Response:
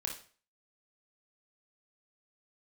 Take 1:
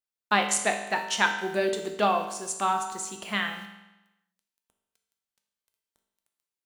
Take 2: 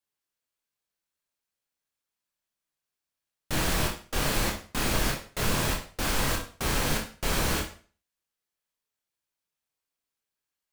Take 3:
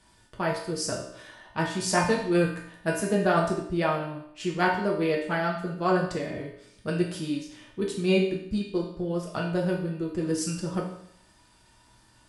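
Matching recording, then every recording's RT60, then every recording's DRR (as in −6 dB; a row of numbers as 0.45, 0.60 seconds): 2; 1.0, 0.40, 0.70 seconds; 3.5, 0.0, −3.5 decibels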